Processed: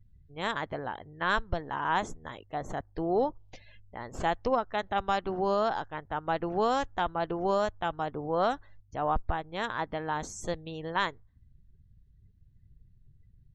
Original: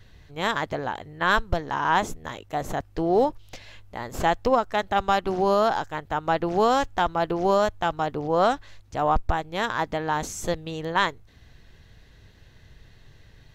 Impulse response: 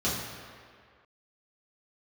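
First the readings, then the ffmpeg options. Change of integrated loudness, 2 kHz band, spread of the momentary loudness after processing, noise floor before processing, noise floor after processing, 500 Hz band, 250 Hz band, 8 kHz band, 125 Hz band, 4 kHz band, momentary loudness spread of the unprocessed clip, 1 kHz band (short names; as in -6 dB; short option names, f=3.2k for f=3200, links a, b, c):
-6.5 dB, -6.5 dB, 10 LU, -53 dBFS, -61 dBFS, -6.5 dB, -6.5 dB, -8.5 dB, -6.5 dB, -7.0 dB, 10 LU, -6.5 dB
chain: -af "lowpass=11k,afftdn=nr=29:nf=-46,volume=-6.5dB"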